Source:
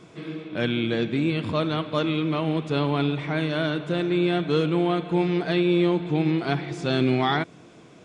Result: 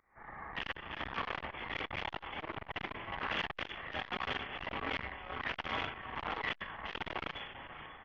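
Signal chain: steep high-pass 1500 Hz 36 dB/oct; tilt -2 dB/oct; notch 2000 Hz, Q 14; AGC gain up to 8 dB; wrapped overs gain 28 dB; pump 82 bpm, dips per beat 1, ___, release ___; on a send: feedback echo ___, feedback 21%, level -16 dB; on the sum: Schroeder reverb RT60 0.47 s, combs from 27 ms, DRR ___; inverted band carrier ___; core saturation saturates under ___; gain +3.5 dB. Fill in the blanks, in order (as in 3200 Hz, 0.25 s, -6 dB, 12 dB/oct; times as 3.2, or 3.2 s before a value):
-24 dB, 0.472 s, 0.541 s, 3.5 dB, 3400 Hz, 1200 Hz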